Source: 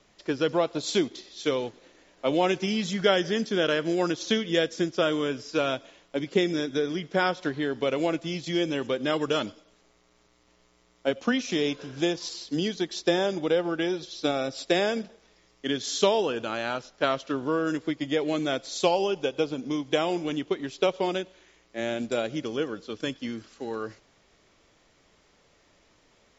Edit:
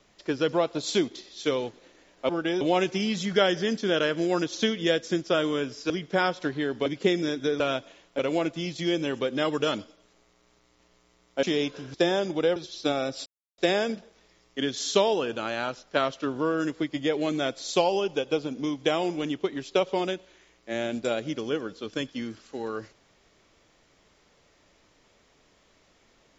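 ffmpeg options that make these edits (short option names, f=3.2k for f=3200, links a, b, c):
-filter_complex "[0:a]asplit=11[a][b][c][d][e][f][g][h][i][j][k];[a]atrim=end=2.292[l];[b]atrim=start=13.628:end=13.952[m];[c]atrim=start=2.288:end=5.582[n];[d]atrim=start=6.908:end=7.872[o];[e]atrim=start=6.168:end=6.912[p];[f]atrim=start=5.578:end=6.172[q];[g]atrim=start=7.868:end=11.112[r];[h]atrim=start=11.478:end=11.992[s];[i]atrim=start=13.008:end=13.632[t];[j]atrim=start=13.948:end=14.65,asetpts=PTS-STARTPTS,afade=t=out:st=0.698:d=0.004:c=hsin,apad=pad_dur=0.32[u];[k]atrim=start=14.65,asetpts=PTS-STARTPTS,afade=t=in:d=0.004:c=hsin[v];[l][m]acrossfade=d=0.004:c1=hsin:c2=hsin[w];[w][n]acrossfade=d=0.004:c1=hsin:c2=hsin[x];[x][o]acrossfade=d=0.004:c1=hsin:c2=hsin[y];[y][p]acrossfade=d=0.004:c1=hsin:c2=hsin[z];[z][q]acrossfade=d=0.004:c1=hsin:c2=hsin[aa];[aa][r]acrossfade=d=0.004:c1=hsin:c2=hsin[ab];[ab][s]acrossfade=d=0.004:c1=hsin:c2=hsin[ac];[ac][t]acrossfade=d=0.004:c1=hsin:c2=hsin[ad];[u][v]concat=n=2:v=0:a=1[ae];[ad][ae]acrossfade=d=0.004:c1=hsin:c2=hsin"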